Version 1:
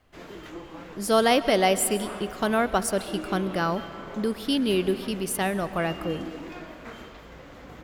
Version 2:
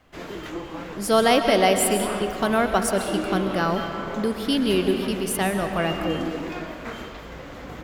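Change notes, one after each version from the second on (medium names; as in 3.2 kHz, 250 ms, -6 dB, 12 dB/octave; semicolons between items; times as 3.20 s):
speech: send +9.5 dB; background +7.0 dB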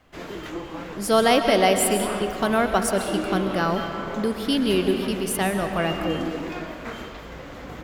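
no change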